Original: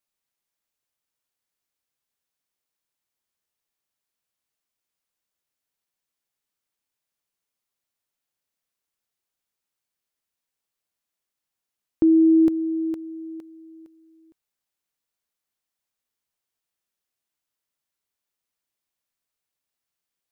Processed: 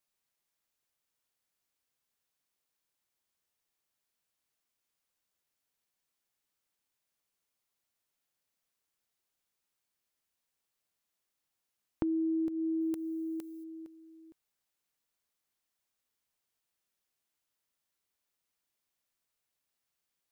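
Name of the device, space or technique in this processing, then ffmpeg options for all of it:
serial compression, peaks first: -filter_complex "[0:a]asettb=1/sr,asplit=3[a][b][c];[a]atrim=end=12.814[d];[b]atrim=start=12.81:end=13.64,asetpts=PTS-STARTPTS,afade=t=in:d=0.004:c=qsin,afade=t=out:st=0.826:d=0.004:c=qsin,aemphasis=mode=production:type=75kf[e];[c]atrim=start=13.636[f];[d][e]acrossfade=d=0.004:c1=hsin:c2=qsin[g];[g][f]acrossfade=d=0.004:c1=qsin:c2=hsin,acompressor=threshold=-26dB:ratio=6,acompressor=threshold=-37dB:ratio=1.5"

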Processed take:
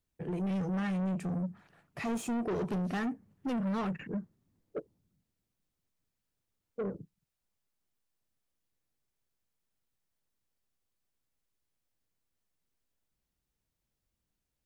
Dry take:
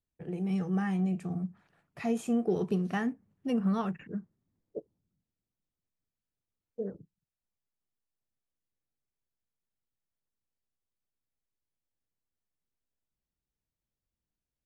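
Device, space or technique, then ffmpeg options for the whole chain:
saturation between pre-emphasis and de-emphasis: -af "highshelf=f=3.3k:g=10,asoftclip=type=tanh:threshold=-35.5dB,highshelf=f=3.3k:g=-10,volume=5.5dB"

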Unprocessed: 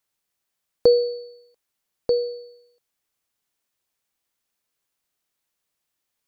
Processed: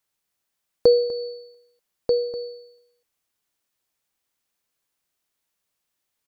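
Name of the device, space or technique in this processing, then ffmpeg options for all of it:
ducked delay: -filter_complex "[0:a]asplit=3[a][b][c];[b]adelay=247,volume=-8.5dB[d];[c]apad=whole_len=287750[e];[d][e]sidechaincompress=threshold=-35dB:ratio=8:attack=16:release=150[f];[a][f]amix=inputs=2:normalize=0"

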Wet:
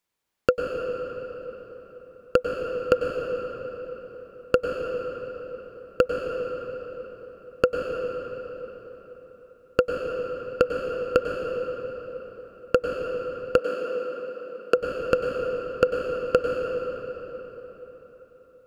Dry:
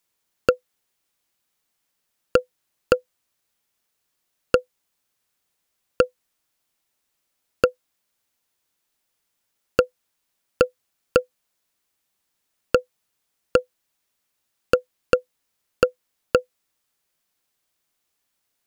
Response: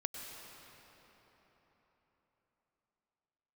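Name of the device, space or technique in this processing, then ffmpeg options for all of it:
swimming-pool hall: -filter_complex "[1:a]atrim=start_sample=2205[a];[0:a][a]afir=irnorm=-1:irlink=0,highshelf=f=4k:g=-8,asettb=1/sr,asplit=3[b][c][d];[b]atrim=end=13.584[e];[c]atrim=start=13.58:end=14.74,asetpts=PTS-STARTPTS,afade=t=in:d=0.004:c=qsin,afade=t=out:st=1.156:d=0.004:c=qsin,highpass=f=190:w=0.5412,highpass=f=190:w=1.3066[f];[d]atrim=start=14.736[g];[e][f]acrossfade=d=0.004:c1=hsin:c2=qsin[h];[h][g]acrossfade=d=0.004:c1=qsin:c2=hsin"

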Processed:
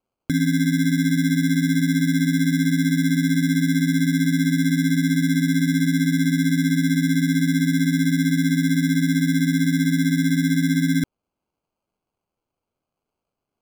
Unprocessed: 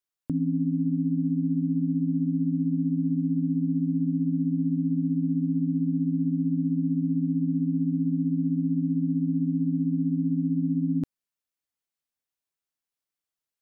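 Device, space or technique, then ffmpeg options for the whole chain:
crushed at another speed: -af "asetrate=35280,aresample=44100,acrusher=samples=30:mix=1:aa=0.000001,asetrate=55125,aresample=44100,volume=6dB"

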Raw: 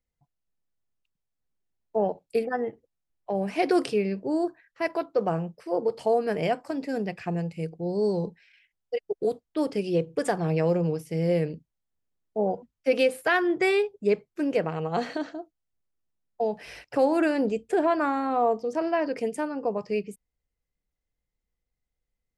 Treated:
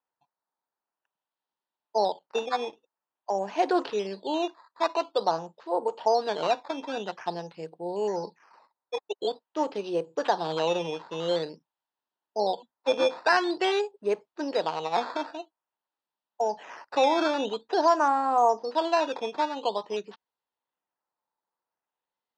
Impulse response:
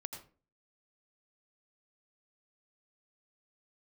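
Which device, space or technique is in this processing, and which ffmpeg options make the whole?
circuit-bent sampling toy: -af "acrusher=samples=10:mix=1:aa=0.000001:lfo=1:lforange=10:lforate=0.48,highpass=410,equalizer=f=460:t=q:w=4:g=-3,equalizer=f=920:t=q:w=4:g=10,equalizer=f=2.2k:t=q:w=4:g=-9,lowpass=f=4.9k:w=0.5412,lowpass=f=4.9k:w=1.3066,volume=1dB"

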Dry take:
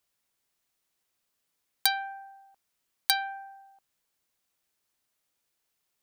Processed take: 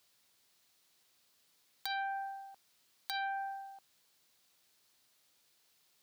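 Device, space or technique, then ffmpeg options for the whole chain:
broadcast voice chain: -af "highpass=75,deesser=0.95,acompressor=threshold=-40dB:ratio=4,equalizer=f=4.2k:t=o:w=0.9:g=6,alimiter=level_in=2.5dB:limit=-24dB:level=0:latency=1:release=142,volume=-2.5dB,volume=6.5dB"

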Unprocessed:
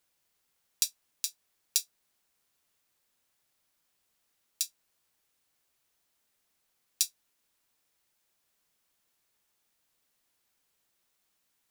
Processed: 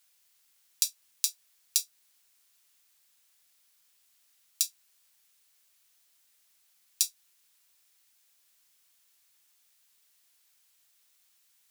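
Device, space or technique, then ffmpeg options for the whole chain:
mastering chain: -af "highpass=41,equalizer=f=250:t=o:w=2.8:g=-2.5,acompressor=threshold=-30dB:ratio=2,tiltshelf=f=1.4k:g=-6.5,asoftclip=type=hard:threshold=-1.5dB,alimiter=level_in=4dB:limit=-1dB:release=50:level=0:latency=1,volume=-1dB"

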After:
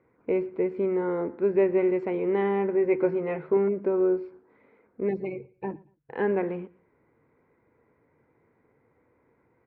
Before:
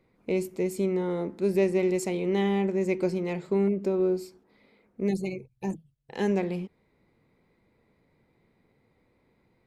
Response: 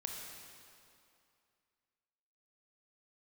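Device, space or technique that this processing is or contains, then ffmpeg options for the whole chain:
bass cabinet: -filter_complex "[0:a]asettb=1/sr,asplit=3[a][b][c];[a]atrim=end=2.734[d];[b]atrim=start=2.73:end=3.57,asetpts=PTS-STARTPTS,afade=t=in:d=0.004:c=qsin,afade=t=out:st=0.836:d=0.004:c=qsin,asplit=2[e][f];[f]adelay=13,volume=-6dB[g];[e][g]amix=inputs=2:normalize=0,atrim=end_sample=37044[h];[c]atrim=start=3.566[i];[d][h]acrossfade=d=0.004:c1=hsin:c2=qsin[j];[j][i]acrossfade=d=0.004:c1=qsin:c2=hsin,highpass=67,equalizer=f=190:t=q:w=4:g=-7,equalizer=f=300:t=q:w=4:g=3,equalizer=f=460:t=q:w=4:g=5,equalizer=f=1k:t=q:w=4:g=5,equalizer=f=1.5k:t=q:w=4:g=7,lowpass=f=2.2k:w=0.5412,lowpass=f=2.2k:w=1.3066,aecho=1:1:116|232:0.0708|0.017"

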